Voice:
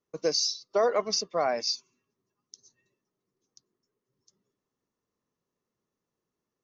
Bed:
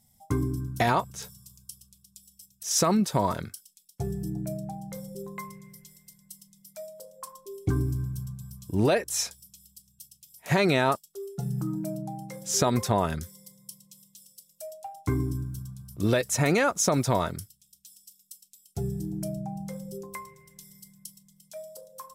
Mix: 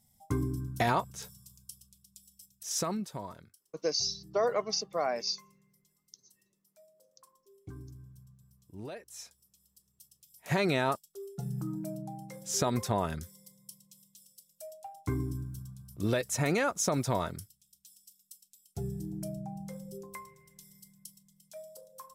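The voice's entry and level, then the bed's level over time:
3.60 s, -4.0 dB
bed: 2.54 s -4 dB
3.44 s -20 dB
8.97 s -20 dB
10.42 s -5.5 dB

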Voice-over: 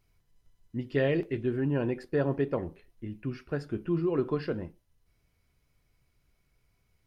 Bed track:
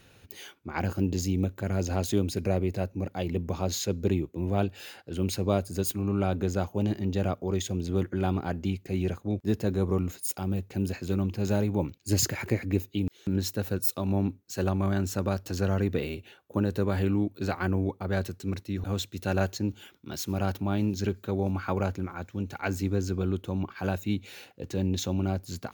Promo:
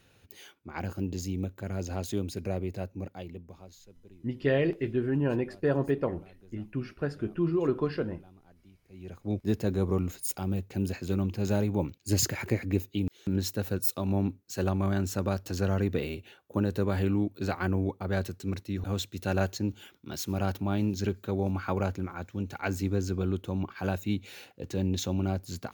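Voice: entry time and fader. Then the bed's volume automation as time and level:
3.50 s, +1.0 dB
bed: 3.04 s -5.5 dB
3.95 s -28.5 dB
8.8 s -28.5 dB
9.31 s -1 dB

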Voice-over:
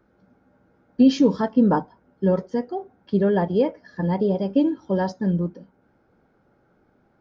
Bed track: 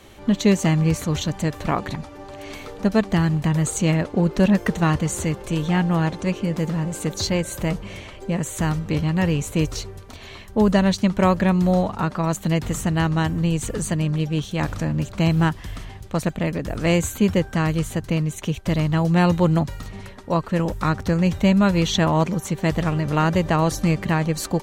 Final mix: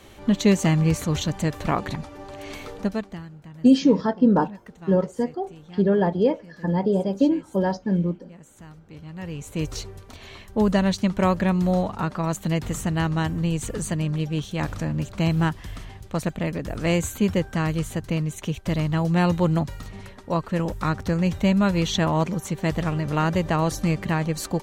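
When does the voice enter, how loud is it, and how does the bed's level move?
2.65 s, 0.0 dB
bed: 2.76 s -1 dB
3.31 s -22.5 dB
8.85 s -22.5 dB
9.75 s -3 dB

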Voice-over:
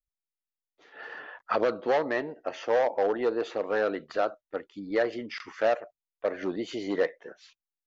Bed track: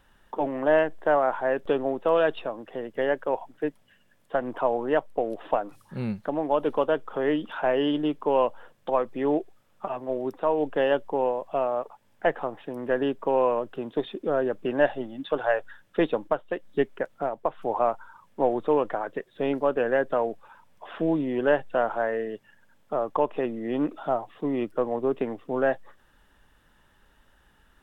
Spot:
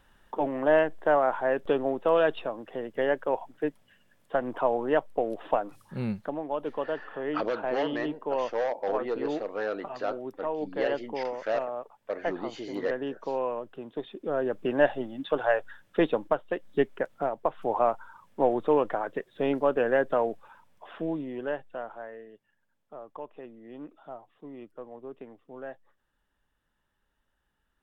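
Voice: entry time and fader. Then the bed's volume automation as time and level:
5.85 s, -4.5 dB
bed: 6.17 s -1 dB
6.43 s -7.5 dB
14.07 s -7.5 dB
14.61 s -0.5 dB
20.36 s -0.5 dB
22.26 s -16.5 dB

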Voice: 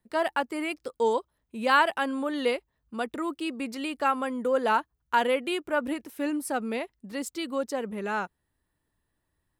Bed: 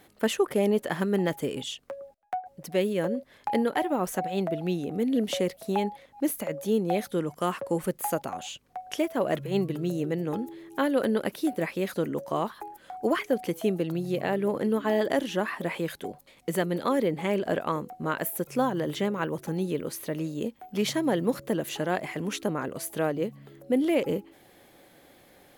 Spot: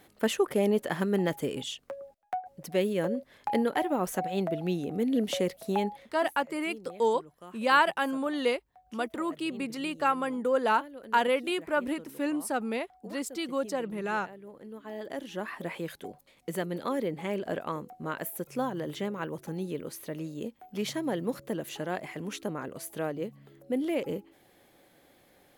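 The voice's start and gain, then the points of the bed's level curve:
6.00 s, -1.0 dB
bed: 6.04 s -1.5 dB
6.31 s -20.5 dB
14.58 s -20.5 dB
15.55 s -5.5 dB

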